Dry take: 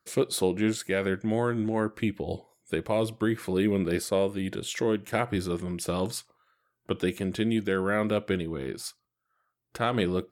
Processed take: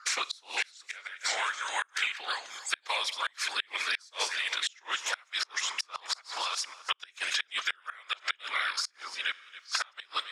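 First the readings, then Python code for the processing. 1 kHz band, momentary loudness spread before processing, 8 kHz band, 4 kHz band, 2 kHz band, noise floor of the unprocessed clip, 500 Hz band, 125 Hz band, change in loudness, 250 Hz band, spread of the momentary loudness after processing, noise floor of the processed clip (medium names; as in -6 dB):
0.0 dB, 8 LU, +3.0 dB, +8.0 dB, +4.5 dB, -80 dBFS, -20.5 dB, under -40 dB, -3.5 dB, -35.0 dB, 5 LU, -64 dBFS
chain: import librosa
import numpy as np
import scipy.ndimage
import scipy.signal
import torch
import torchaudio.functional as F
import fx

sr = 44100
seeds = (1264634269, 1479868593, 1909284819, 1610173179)

p1 = fx.reverse_delay(x, sr, ms=518, wet_db=-8)
p2 = scipy.signal.sosfilt(scipy.signal.cheby2(4, 80, 180.0, 'highpass', fs=sr, output='sos'), p1)
p3 = fx.whisperise(p2, sr, seeds[0])
p4 = fx.lowpass_res(p3, sr, hz=5800.0, q=2.6)
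p5 = p4 + fx.echo_single(p4, sr, ms=274, db=-23.0, dry=0)
p6 = fx.rev_schroeder(p5, sr, rt60_s=0.84, comb_ms=29, drr_db=19.0)
p7 = fx.gate_flip(p6, sr, shuts_db=-24.0, range_db=-32)
p8 = fx.band_squash(p7, sr, depth_pct=100)
y = p8 * 10.0 ** (8.0 / 20.0)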